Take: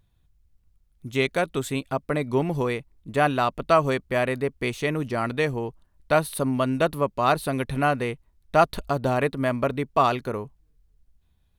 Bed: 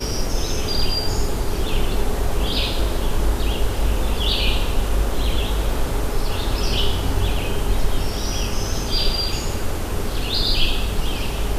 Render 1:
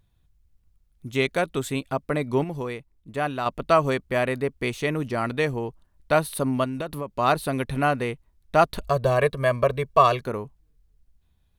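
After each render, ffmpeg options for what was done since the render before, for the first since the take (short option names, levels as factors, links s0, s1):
-filter_complex "[0:a]asettb=1/sr,asplit=3[s0][s1][s2];[s0]atrim=end=6.644[s3];[s1]atrim=start=6.64:end=7.19,asetpts=PTS-STARTPTS,afade=t=in:d=0.004:c=qsin,afade=t=out:st=0.546:d=0.004:c=qsin,acompressor=threshold=0.0501:ratio=6:attack=3.2:release=140:knee=1:detection=peak[s4];[s2]atrim=start=7.186[s5];[s3][s4]acrossfade=d=0.004:c1=hsin:c2=qsin[s6];[s6][s5]acrossfade=d=0.004:c1=qsin:c2=hsin,asettb=1/sr,asplit=3[s7][s8][s9];[s7]atrim=end=8.824[s10];[s8]atrim=start=8.82:end=10.22,asetpts=PTS-STARTPTS,afade=t=in:d=0.004:c=qsin,afade=t=out:st=1.396:d=0.004:c=qsin,aecho=1:1:1.8:0.8,atrim=end_sample=61740[s11];[s9]atrim=start=10.216[s12];[s10][s11]acrossfade=d=0.004:c1=hsin:c2=qsin[s13];[s13][s12]acrossfade=d=0.004:c1=qsin:c2=hsin,asplit=3[s14][s15][s16];[s14]atrim=end=2.442[s17];[s15]atrim=start=2.438:end=3.462,asetpts=PTS-STARTPTS,volume=0.531[s18];[s16]atrim=start=3.458[s19];[s17][s18]acrossfade=d=0.004:c1=hsin:c2=hsin[s20];[s20][s19]acrossfade=d=0.004:c1=hsin:c2=hsin"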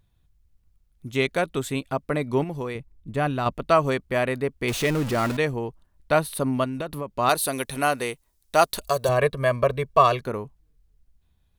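-filter_complex "[0:a]asettb=1/sr,asplit=3[s0][s1][s2];[s0]atrim=end=2.754[s3];[s1]atrim=start=2.75:end=3.53,asetpts=PTS-STARTPTS,afade=t=in:d=0.004:c=qsin,afade=t=out:st=0.776:d=0.004:c=qsin,lowshelf=f=220:g=10.5[s4];[s2]atrim=start=3.526[s5];[s3][s4]acrossfade=d=0.004:c1=hsin:c2=qsin[s6];[s6][s5]acrossfade=d=0.004:c1=qsin:c2=hsin,asettb=1/sr,asplit=3[s7][s8][s9];[s7]atrim=end=4.684[s10];[s8]atrim=start=4.68:end=5.37,asetpts=PTS-STARTPTS,afade=t=in:d=0.004:c=qsin,afade=t=out:st=0.686:d=0.004:c=qsin,aeval=exprs='val(0)+0.5*0.0473*sgn(val(0))':c=same[s11];[s9]atrim=start=5.366[s12];[s10][s11]acrossfade=d=0.004:c1=hsin:c2=qsin[s13];[s13][s12]acrossfade=d=0.004:c1=qsin:c2=hsin,asettb=1/sr,asplit=3[s14][s15][s16];[s14]atrim=end=7.294[s17];[s15]atrim=start=7.29:end=9.09,asetpts=PTS-STARTPTS,afade=t=in:d=0.004:c=qsin,afade=t=out:st=1.796:d=0.004:c=qsin,bass=f=250:g=-9,treble=f=4000:g=13[s18];[s16]atrim=start=9.086[s19];[s17][s18]acrossfade=d=0.004:c1=hsin:c2=qsin[s20];[s20][s19]acrossfade=d=0.004:c1=qsin:c2=hsin"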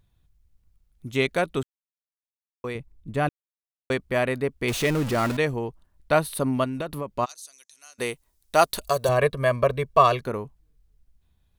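-filter_complex "[0:a]asplit=3[s0][s1][s2];[s0]afade=t=out:st=7.24:d=0.02[s3];[s1]bandpass=f=6300:t=q:w=6.7,afade=t=in:st=7.24:d=0.02,afade=t=out:st=7.98:d=0.02[s4];[s2]afade=t=in:st=7.98:d=0.02[s5];[s3][s4][s5]amix=inputs=3:normalize=0,asplit=5[s6][s7][s8][s9][s10];[s6]atrim=end=1.63,asetpts=PTS-STARTPTS,afade=t=out:st=1.626:d=0.004:c=hsin[s11];[s7]atrim=start=1.63:end=2.64,asetpts=PTS-STARTPTS,volume=0[s12];[s8]atrim=start=2.64:end=3.29,asetpts=PTS-STARTPTS,afade=t=in:d=0.004:c=hsin,afade=t=out:st=0.646:d=0.004:c=hsin[s13];[s9]atrim=start=3.29:end=3.9,asetpts=PTS-STARTPTS,volume=0[s14];[s10]atrim=start=3.9,asetpts=PTS-STARTPTS,afade=t=in:d=0.004:c=hsin[s15];[s11][s12][s13][s14][s15]concat=n=5:v=0:a=1"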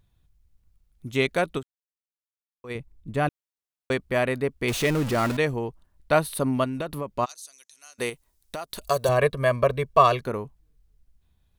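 -filter_complex "[0:a]asettb=1/sr,asplit=3[s0][s1][s2];[s0]atrim=end=8.094[s3];[s1]atrim=start=8.09:end=8.87,asetpts=PTS-STARTPTS,afade=t=in:d=0.004:c=qsin,afade=t=out:st=0.776:d=0.004:c=qsin,acompressor=threshold=0.0316:ratio=10:attack=3.2:release=140:knee=1:detection=peak[s4];[s2]atrim=start=8.866[s5];[s3][s4]acrossfade=d=0.004:c1=hsin:c2=qsin[s6];[s6][s5]acrossfade=d=0.004:c1=qsin:c2=hsin,asplit=3[s7][s8][s9];[s7]atrim=end=1.74,asetpts=PTS-STARTPTS,afade=t=out:st=1.57:d=0.17:c=exp:silence=0.281838[s10];[s8]atrim=start=1.74:end=2.54,asetpts=PTS-STARTPTS,volume=0.282[s11];[s9]atrim=start=2.54,asetpts=PTS-STARTPTS,afade=t=in:d=0.17:c=exp:silence=0.281838[s12];[s10][s11][s12]concat=n=3:v=0:a=1"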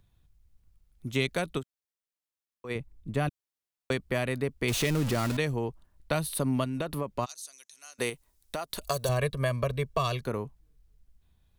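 -filter_complex "[0:a]acrossover=split=200|3000[s0][s1][s2];[s1]acompressor=threshold=0.0398:ratio=6[s3];[s0][s3][s2]amix=inputs=3:normalize=0"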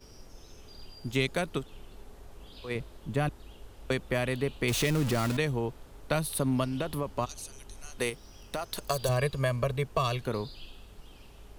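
-filter_complex "[1:a]volume=0.0398[s0];[0:a][s0]amix=inputs=2:normalize=0"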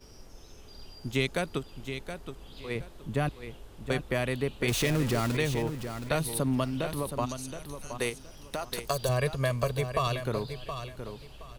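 -af "aecho=1:1:721|1442|2163:0.355|0.0852|0.0204"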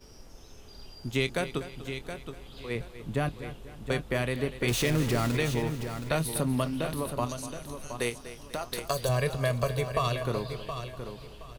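-filter_complex "[0:a]asplit=2[s0][s1];[s1]adelay=25,volume=0.2[s2];[s0][s2]amix=inputs=2:normalize=0,aecho=1:1:245|490|735|980:0.2|0.0878|0.0386|0.017"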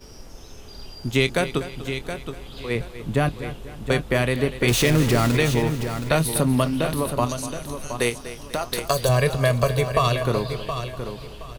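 -af "volume=2.51"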